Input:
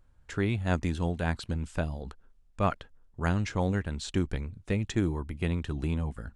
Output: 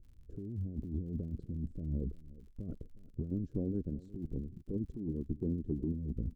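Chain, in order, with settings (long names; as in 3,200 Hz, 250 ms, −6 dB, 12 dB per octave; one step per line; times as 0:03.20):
inverse Chebyshev low-pass filter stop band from 810 Hz, stop band 40 dB
0:03.30–0:05.94: harmonic and percussive parts rebalanced harmonic −16 dB
dynamic equaliser 240 Hz, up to +4 dB, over −40 dBFS, Q 0.77
compressor whose output falls as the input rises −35 dBFS, ratio −1
surface crackle 66 per second −57 dBFS
single-tap delay 361 ms −19 dB
level −1.5 dB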